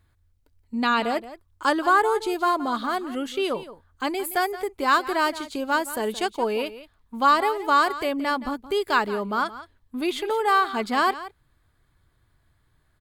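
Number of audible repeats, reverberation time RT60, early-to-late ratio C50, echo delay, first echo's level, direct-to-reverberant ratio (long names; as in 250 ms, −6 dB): 1, no reverb audible, no reverb audible, 172 ms, −15.0 dB, no reverb audible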